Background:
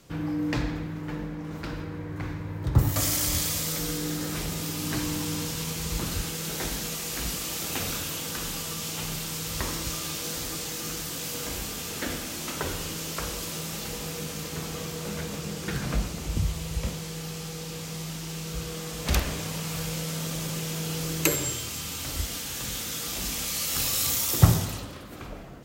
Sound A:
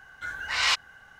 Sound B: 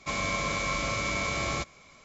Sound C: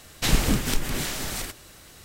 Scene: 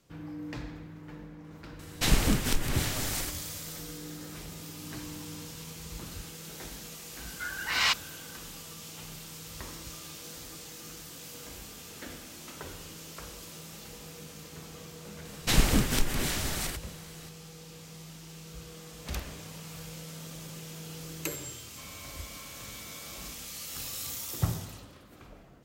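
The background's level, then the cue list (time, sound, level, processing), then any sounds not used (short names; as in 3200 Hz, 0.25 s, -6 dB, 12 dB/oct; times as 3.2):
background -11.5 dB
1.79 add C -3 dB
7.18 add A -2 dB
15.25 add C -2 dB
21.7 add B -17.5 dB + soft clip -26.5 dBFS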